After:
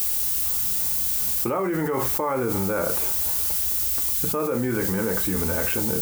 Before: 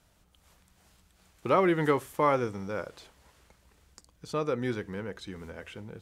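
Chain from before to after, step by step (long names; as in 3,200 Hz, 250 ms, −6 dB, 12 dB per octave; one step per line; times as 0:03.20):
low-pass filter 2,400 Hz 24 dB per octave
parametric band 1,900 Hz −5 dB 0.39 octaves
background noise violet −44 dBFS
convolution reverb, pre-delay 3 ms, DRR 3.5 dB
envelope flattener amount 100%
level −5.5 dB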